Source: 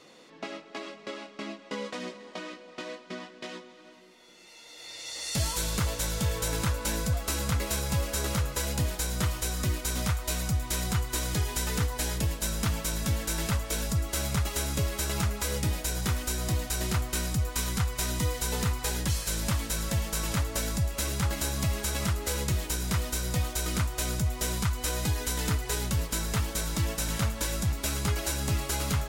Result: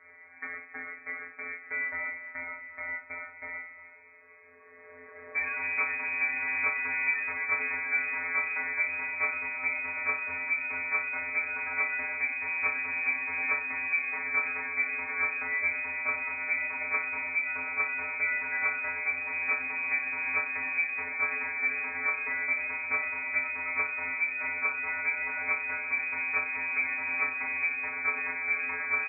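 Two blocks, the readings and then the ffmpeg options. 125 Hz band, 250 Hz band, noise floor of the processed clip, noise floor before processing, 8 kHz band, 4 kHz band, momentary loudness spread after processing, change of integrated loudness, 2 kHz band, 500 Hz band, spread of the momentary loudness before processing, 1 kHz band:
under -30 dB, -16.5 dB, -52 dBFS, -52 dBFS, under -40 dB, under -40 dB, 9 LU, +0.5 dB, +12.0 dB, -9.5 dB, 11 LU, -0.5 dB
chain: -af "aecho=1:1:20|42|66.2|92.82|122.1:0.631|0.398|0.251|0.158|0.1,afftfilt=real='hypot(re,im)*cos(PI*b)':imag='0':win_size=1024:overlap=0.75,lowpass=f=2.1k:t=q:w=0.5098,lowpass=f=2.1k:t=q:w=0.6013,lowpass=f=2.1k:t=q:w=0.9,lowpass=f=2.1k:t=q:w=2.563,afreqshift=-2500,volume=2.5dB"

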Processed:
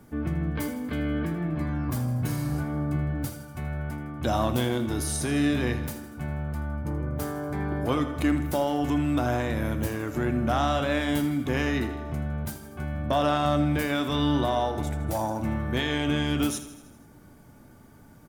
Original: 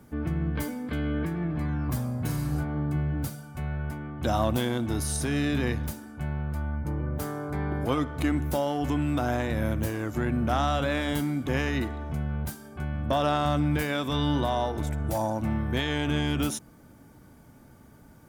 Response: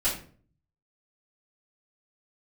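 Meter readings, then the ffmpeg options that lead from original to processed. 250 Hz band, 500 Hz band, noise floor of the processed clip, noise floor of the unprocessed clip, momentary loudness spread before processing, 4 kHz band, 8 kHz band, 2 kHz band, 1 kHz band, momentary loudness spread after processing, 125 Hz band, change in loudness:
+2.0 dB, +1.5 dB, -51 dBFS, -53 dBFS, 7 LU, +1.0 dB, +1.0 dB, +1.0 dB, +1.0 dB, 8 LU, 0.0 dB, +1.0 dB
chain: -filter_complex "[0:a]aecho=1:1:80|160|240|320|400|480:0.211|0.127|0.0761|0.0457|0.0274|0.0164,asplit=2[a][b];[1:a]atrim=start_sample=2205[c];[b][c]afir=irnorm=-1:irlink=0,volume=-20.5dB[d];[a][d]amix=inputs=2:normalize=0"

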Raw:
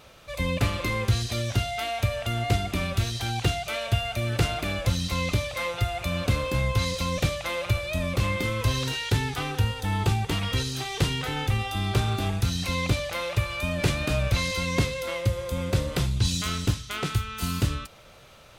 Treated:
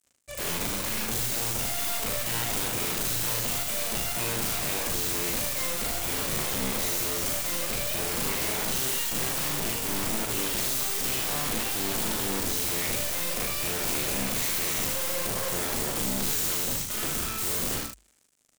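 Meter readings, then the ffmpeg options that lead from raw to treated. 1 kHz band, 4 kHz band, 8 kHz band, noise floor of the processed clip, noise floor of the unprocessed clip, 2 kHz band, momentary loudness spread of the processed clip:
-3.5 dB, -0.5 dB, +9.5 dB, -49 dBFS, -50 dBFS, -2.5 dB, 2 LU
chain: -filter_complex "[0:a]aeval=exprs='sgn(val(0))*max(abs(val(0))-0.00631,0)':c=same,equalizer=f=250:t=o:w=1:g=7,equalizer=f=1k:t=o:w=1:g=-4,equalizer=f=4k:t=o:w=1:g=-4,equalizer=f=8k:t=o:w=1:g=12,dynaudnorm=f=320:g=9:m=9dB,aeval=exprs='(tanh(15.8*val(0)+0.5)-tanh(0.5))/15.8':c=same,acontrast=68,aeval=exprs='(mod(14.1*val(0)+1,2)-1)/14.1':c=same,highshelf=f=11k:g=6.5,bandreject=f=50:t=h:w=6,bandreject=f=100:t=h:w=6,asplit=2[a][b];[b]aecho=0:1:41|76:0.596|0.562[c];[a][c]amix=inputs=2:normalize=0,volume=-6dB"

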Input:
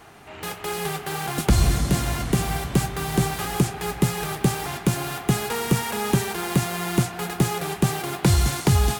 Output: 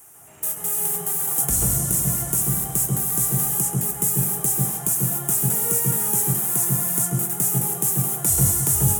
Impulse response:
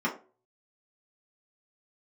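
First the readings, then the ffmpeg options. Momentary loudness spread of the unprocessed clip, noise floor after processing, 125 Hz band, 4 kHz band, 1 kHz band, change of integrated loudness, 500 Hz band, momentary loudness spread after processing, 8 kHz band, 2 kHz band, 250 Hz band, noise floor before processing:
8 LU, -34 dBFS, -2.0 dB, -10.0 dB, -7.0 dB, +4.5 dB, -6.5 dB, 4 LU, +11.5 dB, -10.5 dB, -5.0 dB, -39 dBFS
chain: -filter_complex "[0:a]aexciter=amount=11.6:drive=9:freq=6.6k,asplit=2[a][b];[1:a]atrim=start_sample=2205,asetrate=24696,aresample=44100,adelay=133[c];[b][c]afir=irnorm=-1:irlink=0,volume=-11dB[d];[a][d]amix=inputs=2:normalize=0,volume=-12.5dB"

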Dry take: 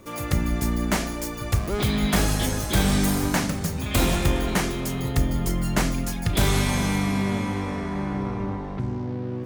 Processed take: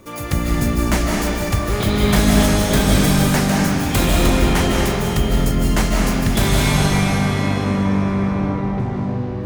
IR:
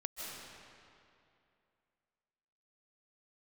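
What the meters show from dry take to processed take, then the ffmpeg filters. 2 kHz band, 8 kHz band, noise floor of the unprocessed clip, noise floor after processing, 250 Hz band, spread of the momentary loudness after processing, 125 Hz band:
+7.0 dB, +5.5 dB, -32 dBFS, -24 dBFS, +7.5 dB, 6 LU, +7.0 dB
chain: -filter_complex "[1:a]atrim=start_sample=2205[a];[0:a][a]afir=irnorm=-1:irlink=0,volume=6.5dB"

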